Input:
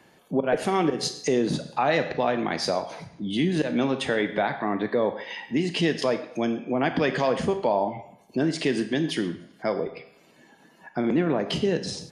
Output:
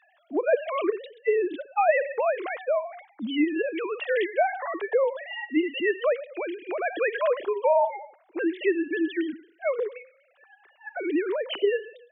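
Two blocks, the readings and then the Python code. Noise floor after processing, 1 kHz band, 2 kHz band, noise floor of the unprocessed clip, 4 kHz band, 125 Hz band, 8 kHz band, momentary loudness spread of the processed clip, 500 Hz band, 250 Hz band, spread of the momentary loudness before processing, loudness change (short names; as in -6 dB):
-63 dBFS, -0.5 dB, +0.5 dB, -57 dBFS, -7.5 dB, under -25 dB, under -40 dB, 10 LU, +1.0 dB, -4.5 dB, 7 LU, -1.0 dB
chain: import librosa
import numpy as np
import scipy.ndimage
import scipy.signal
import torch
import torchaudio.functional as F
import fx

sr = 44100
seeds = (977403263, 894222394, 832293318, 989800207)

y = fx.sine_speech(x, sr)
y = fx.low_shelf(y, sr, hz=320.0, db=-11.0)
y = y * 10.0 ** (2.5 / 20.0)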